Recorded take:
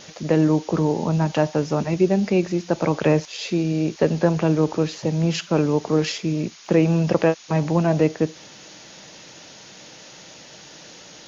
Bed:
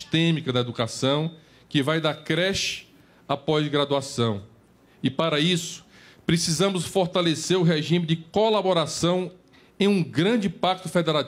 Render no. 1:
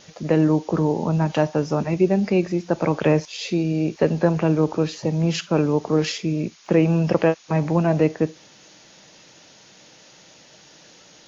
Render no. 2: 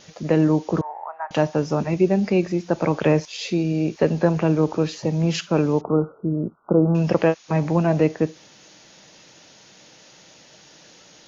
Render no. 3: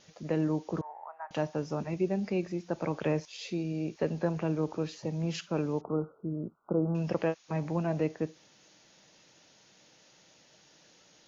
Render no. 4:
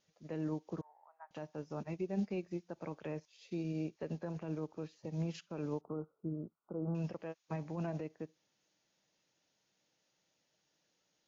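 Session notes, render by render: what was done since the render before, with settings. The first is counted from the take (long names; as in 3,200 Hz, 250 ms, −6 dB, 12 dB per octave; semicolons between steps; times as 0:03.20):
noise reduction from a noise print 6 dB
0:00.81–0:01.31: elliptic band-pass filter 710–1,900 Hz, stop band 60 dB; 0:05.81–0:06.95: linear-phase brick-wall low-pass 1,500 Hz
level −11.5 dB
brickwall limiter −26 dBFS, peak gain reduction 9 dB; expander for the loud parts 2.5 to 1, over −43 dBFS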